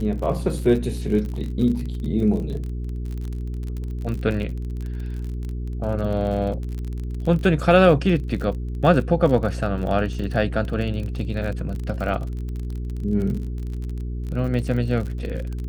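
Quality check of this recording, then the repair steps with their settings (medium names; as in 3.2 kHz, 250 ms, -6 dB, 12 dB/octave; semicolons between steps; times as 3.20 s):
crackle 37 per s -29 dBFS
hum 60 Hz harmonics 7 -28 dBFS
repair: de-click; de-hum 60 Hz, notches 7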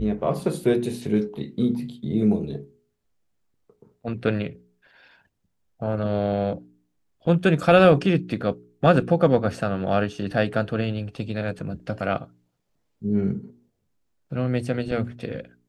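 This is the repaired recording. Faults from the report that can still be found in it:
nothing left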